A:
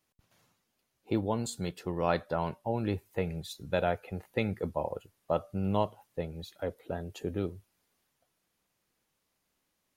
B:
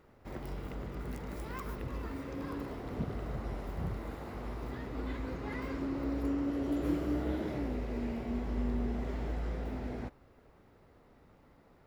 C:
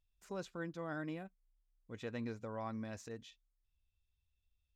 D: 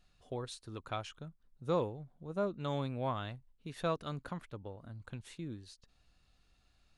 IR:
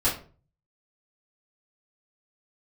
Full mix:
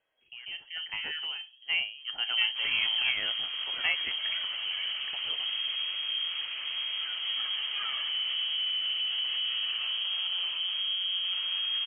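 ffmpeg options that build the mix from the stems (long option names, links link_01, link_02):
-filter_complex "[1:a]alimiter=level_in=5.5dB:limit=-24dB:level=0:latency=1:release=50,volume=-5.5dB,asoftclip=type=tanh:threshold=-30.5dB,adelay=2300,volume=-2.5dB[link_01];[2:a]adelay=150,volume=0dB,asplit=2[link_02][link_03];[link_03]volume=-20dB[link_04];[3:a]aemphasis=mode=production:type=riaa,volume=-3.5dB[link_05];[4:a]atrim=start_sample=2205[link_06];[link_04][link_06]afir=irnorm=-1:irlink=0[link_07];[link_01][link_02][link_05][link_07]amix=inputs=4:normalize=0,dynaudnorm=framelen=230:gausssize=11:maxgain=9dB,lowpass=frequency=2800:width_type=q:width=0.5098,lowpass=frequency=2800:width_type=q:width=0.6013,lowpass=frequency=2800:width_type=q:width=0.9,lowpass=frequency=2800:width_type=q:width=2.563,afreqshift=-3300"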